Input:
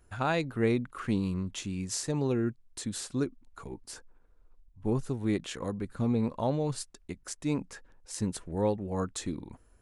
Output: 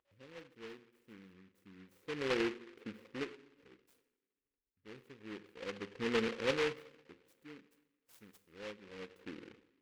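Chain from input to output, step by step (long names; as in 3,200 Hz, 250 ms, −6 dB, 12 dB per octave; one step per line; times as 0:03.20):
noise gate −54 dBFS, range −39 dB
brick-wall band-stop 570–8,500 Hz
upward compression, threshold −44 dBFS
LFO wah 0.28 Hz 450–3,200 Hz, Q 2.5
coupled-rooms reverb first 0.77 s, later 2.1 s, DRR 9 dB
short delay modulated by noise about 1,800 Hz, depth 0.19 ms
level +1.5 dB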